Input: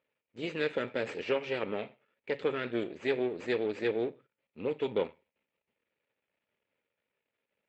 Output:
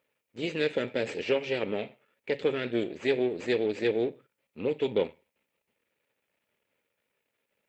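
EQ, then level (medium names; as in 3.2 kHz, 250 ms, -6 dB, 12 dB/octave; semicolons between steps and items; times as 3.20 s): treble shelf 6.1 kHz +5.5 dB; dynamic bell 1.2 kHz, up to -8 dB, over -51 dBFS, Q 1.4; +4.5 dB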